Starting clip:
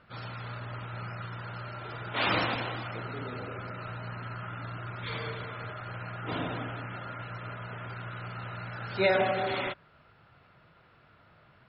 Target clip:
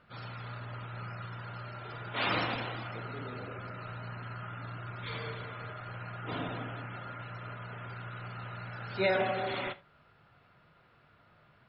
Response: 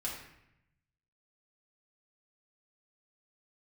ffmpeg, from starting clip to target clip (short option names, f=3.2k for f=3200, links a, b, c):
-filter_complex "[0:a]asplit=2[a][b];[1:a]atrim=start_sample=2205,atrim=end_sample=3969[c];[b][c]afir=irnorm=-1:irlink=0,volume=-10.5dB[d];[a][d]amix=inputs=2:normalize=0,volume=-5dB"